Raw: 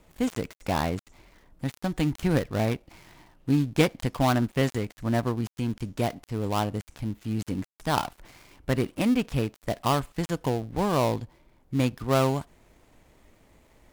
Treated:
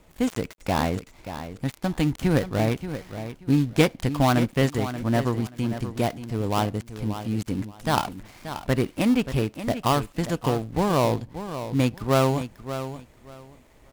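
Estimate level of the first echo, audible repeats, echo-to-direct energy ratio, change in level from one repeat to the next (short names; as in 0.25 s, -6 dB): -11.0 dB, 2, -11.0 dB, -14.0 dB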